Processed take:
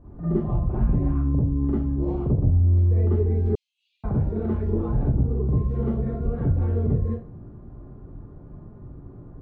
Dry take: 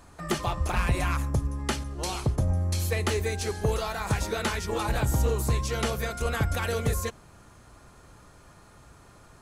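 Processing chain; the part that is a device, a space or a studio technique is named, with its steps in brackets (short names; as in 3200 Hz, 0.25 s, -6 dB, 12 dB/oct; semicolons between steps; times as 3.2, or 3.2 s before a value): television next door (compressor, threshold -30 dBFS, peak gain reduction 10 dB; LPF 330 Hz 12 dB/oct; reverb RT60 0.35 s, pre-delay 38 ms, DRR -8 dB); 3.55–4.04 steep high-pass 2600 Hz 72 dB/oct; gain +5.5 dB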